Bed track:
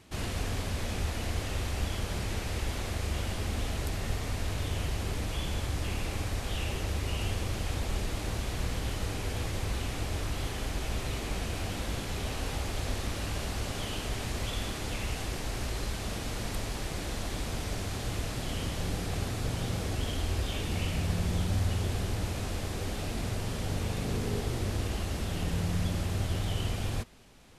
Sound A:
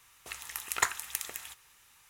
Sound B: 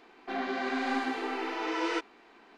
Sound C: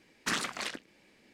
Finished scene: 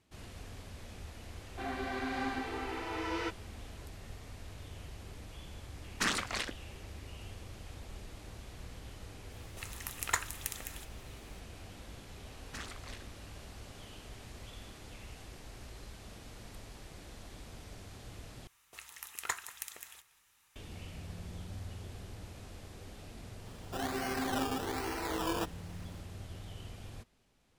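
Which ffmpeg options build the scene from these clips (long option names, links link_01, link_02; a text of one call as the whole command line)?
ffmpeg -i bed.wav -i cue0.wav -i cue1.wav -i cue2.wav -filter_complex "[2:a]asplit=2[link_01][link_02];[3:a]asplit=2[link_03][link_04];[1:a]asplit=2[link_05][link_06];[0:a]volume=-15dB[link_07];[link_06]asplit=2[link_08][link_09];[link_09]adelay=186.6,volume=-17dB,highshelf=frequency=4000:gain=-4.2[link_10];[link_08][link_10]amix=inputs=2:normalize=0[link_11];[link_02]acrusher=samples=17:mix=1:aa=0.000001:lfo=1:lforange=10.2:lforate=1.2[link_12];[link_07]asplit=2[link_13][link_14];[link_13]atrim=end=18.474[link_15];[link_11]atrim=end=2.09,asetpts=PTS-STARTPTS,volume=-8dB[link_16];[link_14]atrim=start=20.556[link_17];[link_01]atrim=end=2.57,asetpts=PTS-STARTPTS,volume=-5.5dB,afade=type=in:duration=0.004:curve=hsin,afade=type=out:start_time=2.566:duration=0.004:curve=hsin,adelay=1300[link_18];[link_03]atrim=end=1.33,asetpts=PTS-STARTPTS,afade=type=in:duration=0.004:curve=hsin,afade=type=out:start_time=1.326:duration=0.004:curve=hsin,adelay=5740[link_19];[link_05]atrim=end=2.09,asetpts=PTS-STARTPTS,volume=-4dB,afade=type=in:duration=0.004:curve=hsin,afade=type=out:start_time=2.086:duration=0.004:curve=hsin,adelay=9310[link_20];[link_04]atrim=end=1.33,asetpts=PTS-STARTPTS,volume=-14dB,afade=type=in:duration=0.004:curve=hsin,afade=type=out:start_time=1.326:duration=0.004:curve=hsin,adelay=12270[link_21];[link_12]atrim=end=2.57,asetpts=PTS-STARTPTS,volume=-3.5dB,afade=type=in:duration=0.004:curve=hsin,afade=type=out:start_time=2.566:duration=0.004:curve=hsin,adelay=23450[link_22];[link_15][link_16]acrossfade=duration=0.004:curve1=hsin:curve2=hsin[link_23];[link_23][link_17]acrossfade=duration=0.004:curve1=hsin:curve2=hsin[link_24];[link_24][link_18][link_19][link_20][link_21][link_22]amix=inputs=6:normalize=0" out.wav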